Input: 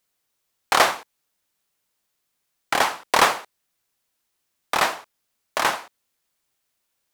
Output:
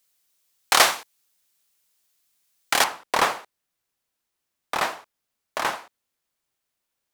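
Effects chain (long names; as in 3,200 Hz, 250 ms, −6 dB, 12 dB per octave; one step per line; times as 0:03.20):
high-shelf EQ 2,300 Hz +10.5 dB, from 0:02.84 −2.5 dB
level −3.5 dB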